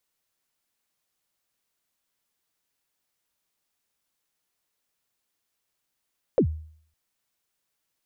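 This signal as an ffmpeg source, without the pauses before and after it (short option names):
-f lavfi -i "aevalsrc='0.211*pow(10,-3*t/0.56)*sin(2*PI*(590*0.085/log(78/590)*(exp(log(78/590)*min(t,0.085)/0.085)-1)+78*max(t-0.085,0)))':d=0.56:s=44100"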